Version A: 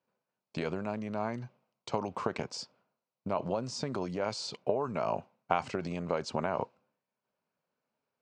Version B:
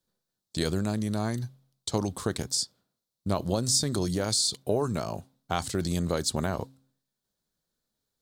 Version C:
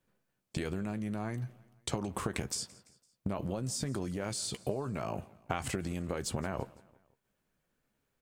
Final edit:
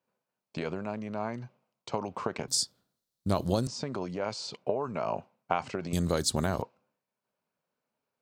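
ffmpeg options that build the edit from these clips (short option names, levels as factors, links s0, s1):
-filter_complex "[1:a]asplit=2[s0][s1];[0:a]asplit=3[s2][s3][s4];[s2]atrim=end=2.482[s5];[s0]atrim=start=2.478:end=3.672[s6];[s3]atrim=start=3.668:end=5.932[s7];[s1]atrim=start=5.928:end=6.622[s8];[s4]atrim=start=6.618[s9];[s5][s6]acrossfade=d=0.004:c1=hsin:c2=hsin[s10];[s10][s7]acrossfade=d=0.004:c1=hsin:c2=hsin[s11];[s11][s8]acrossfade=d=0.004:c1=hsin:c2=hsin[s12];[s12][s9]acrossfade=d=0.004:c1=hsin:c2=hsin"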